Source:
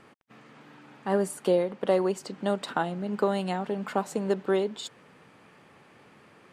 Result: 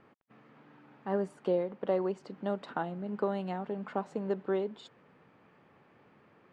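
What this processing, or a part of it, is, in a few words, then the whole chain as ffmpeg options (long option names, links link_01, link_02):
through cloth: -af "lowpass=6600,highshelf=frequency=3500:gain=-15,volume=-5.5dB"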